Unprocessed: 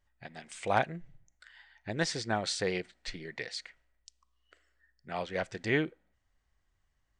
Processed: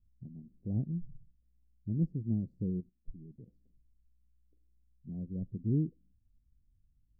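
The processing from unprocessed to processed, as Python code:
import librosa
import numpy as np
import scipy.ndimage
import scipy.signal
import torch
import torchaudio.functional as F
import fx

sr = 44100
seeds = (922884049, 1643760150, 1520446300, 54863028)

y = scipy.signal.sosfilt(scipy.signal.cheby2(4, 70, 1100.0, 'lowpass', fs=sr, output='sos'), x)
y = fx.level_steps(y, sr, step_db=14, at=(2.79, 3.47), fade=0.02)
y = F.gain(torch.from_numpy(y), 7.0).numpy()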